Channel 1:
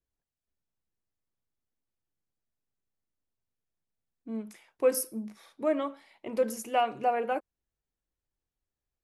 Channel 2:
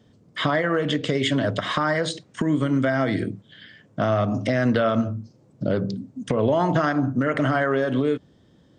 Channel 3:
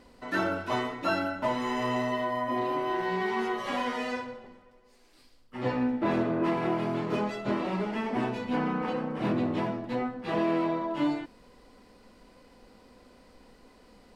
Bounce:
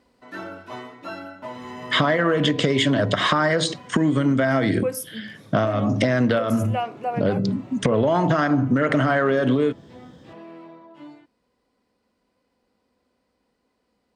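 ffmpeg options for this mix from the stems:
-filter_complex "[0:a]volume=0dB,asplit=2[a][b];[1:a]acontrast=79,adelay=1550,volume=1.5dB[c];[2:a]volume=-6.5dB,afade=t=out:st=2.04:d=0.62:silence=0.375837[d];[b]apad=whole_len=455580[e];[c][e]sidechaincompress=threshold=-31dB:ratio=4:attack=16:release=307[f];[a][f]amix=inputs=2:normalize=0,acompressor=threshold=-16dB:ratio=6,volume=0dB[g];[d][g]amix=inputs=2:normalize=0,highpass=63"

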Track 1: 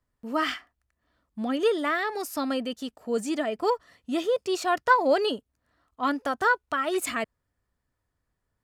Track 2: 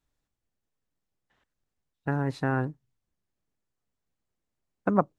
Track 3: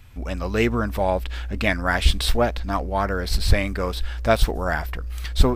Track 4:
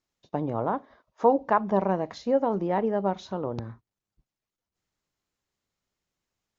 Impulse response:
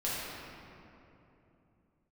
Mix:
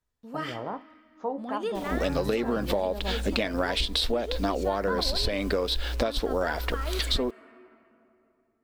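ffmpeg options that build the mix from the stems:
-filter_complex "[0:a]volume=-9dB,asplit=2[a][b];[b]volume=-17.5dB[c];[1:a]asplit=2[d][e];[e]adelay=2.7,afreqshift=1.7[f];[d][f]amix=inputs=2:normalize=1,volume=-2.5dB[g];[2:a]equalizer=f=125:t=o:w=1:g=-12,equalizer=f=250:t=o:w=1:g=8,equalizer=f=500:t=o:w=1:g=10,equalizer=f=4k:t=o:w=1:g=11,acrusher=bits=7:mix=0:aa=0.000001,acompressor=threshold=-17dB:ratio=6,adelay=1750,volume=1dB[h];[3:a]dynaudnorm=f=120:g=5:m=11.5dB,flanger=delay=9.3:depth=6.5:regen=65:speed=1.9:shape=triangular,volume=-13.5dB[i];[4:a]atrim=start_sample=2205[j];[c][j]afir=irnorm=-1:irlink=0[k];[a][g][h][i][k]amix=inputs=5:normalize=0,acompressor=threshold=-23dB:ratio=6"

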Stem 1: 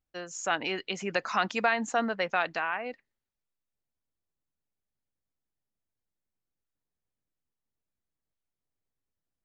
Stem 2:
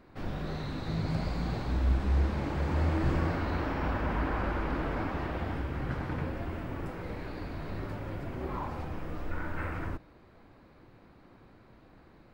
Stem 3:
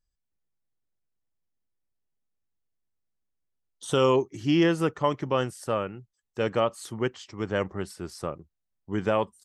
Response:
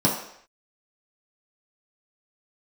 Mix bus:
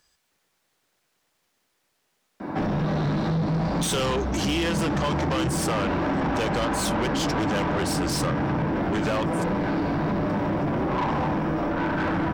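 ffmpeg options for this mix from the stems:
-filter_complex "[1:a]highshelf=f=2.3k:g=-10.5,acompressor=threshold=-35dB:ratio=6,adelay=2400,volume=-9.5dB,asplit=2[a][b];[b]volume=-4.5dB[c];[2:a]acompressor=threshold=-30dB:ratio=4,volume=-0.5dB[d];[3:a]atrim=start_sample=2205[e];[c][e]afir=irnorm=-1:irlink=0[f];[a][d][f]amix=inputs=3:normalize=0,acrossover=split=160|3000[g][h][i];[h]acompressor=threshold=-40dB:ratio=3[j];[g][j][i]amix=inputs=3:normalize=0,asplit=2[k][l];[l]highpass=f=720:p=1,volume=33dB,asoftclip=type=tanh:threshold=-16dB[m];[k][m]amix=inputs=2:normalize=0,lowpass=f=5.1k:p=1,volume=-6dB"

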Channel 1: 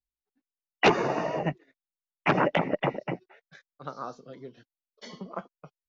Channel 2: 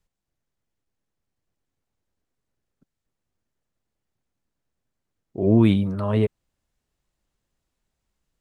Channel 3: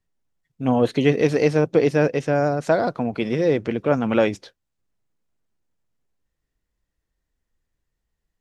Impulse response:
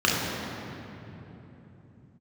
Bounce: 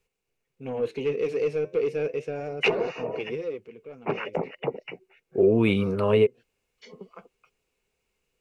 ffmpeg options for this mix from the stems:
-filter_complex "[0:a]acrossover=split=1200[a][b];[a]aeval=exprs='val(0)*(1-1/2+1/2*cos(2*PI*3.1*n/s))':c=same[c];[b]aeval=exprs='val(0)*(1-1/2-1/2*cos(2*PI*3.1*n/s))':c=same[d];[c][d]amix=inputs=2:normalize=0,adelay=1800,volume=-3.5dB[e];[1:a]lowshelf=f=190:g=-7.5,volume=2dB[f];[2:a]flanger=delay=2.1:depth=8.7:regen=-78:speed=0.32:shape=sinusoidal,asoftclip=type=tanh:threshold=-18dB,volume=-9dB,afade=t=out:st=3.33:d=0.31:silence=0.251189[g];[e][f][g]amix=inputs=3:normalize=0,superequalizer=7b=3.16:12b=2.82,acompressor=threshold=-16dB:ratio=6"

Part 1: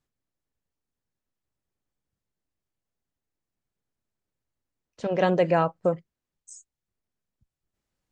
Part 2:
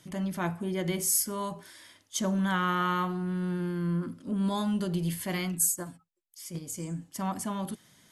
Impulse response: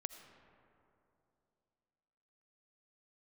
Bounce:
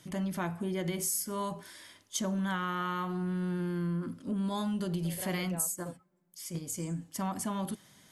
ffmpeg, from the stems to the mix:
-filter_complex "[0:a]volume=-11.5dB[a];[1:a]acompressor=threshold=-30dB:ratio=6,volume=0dB,asplit=3[b][c][d];[c]volume=-21.5dB[e];[d]apad=whole_len=357889[f];[a][f]sidechaincompress=threshold=-41dB:ratio=8:attack=16:release=1350[g];[2:a]atrim=start_sample=2205[h];[e][h]afir=irnorm=-1:irlink=0[i];[g][b][i]amix=inputs=3:normalize=0"

